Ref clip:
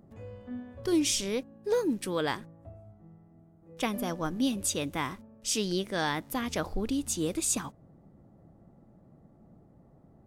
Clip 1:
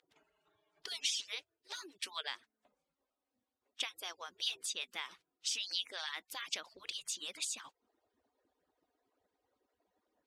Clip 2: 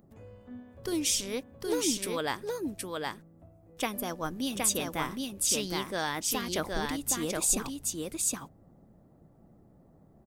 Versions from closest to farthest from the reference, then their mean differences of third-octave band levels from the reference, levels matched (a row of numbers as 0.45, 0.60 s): 2, 1; 6.5, 10.0 dB